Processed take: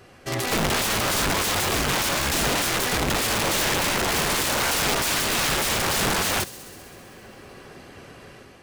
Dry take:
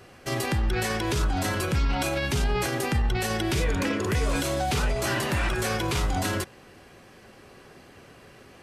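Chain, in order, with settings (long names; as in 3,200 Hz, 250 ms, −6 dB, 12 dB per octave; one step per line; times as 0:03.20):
automatic gain control gain up to 6 dB
wrap-around overflow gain 18 dB
delay with a high-pass on its return 65 ms, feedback 82%, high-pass 4,800 Hz, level −15.5 dB
highs frequency-modulated by the lows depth 0.21 ms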